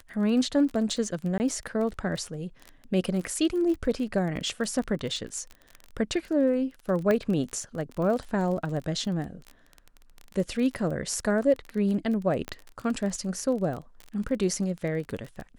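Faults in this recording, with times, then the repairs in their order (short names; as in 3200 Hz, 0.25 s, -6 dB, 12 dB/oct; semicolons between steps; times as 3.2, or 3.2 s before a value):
crackle 25/s -32 dBFS
1.38–1.4 gap 19 ms
7.11 pop -14 dBFS
12.48 pop -19 dBFS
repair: de-click; interpolate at 1.38, 19 ms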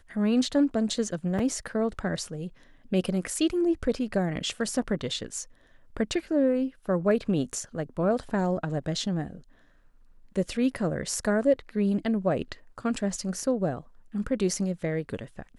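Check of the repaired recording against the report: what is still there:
7.11 pop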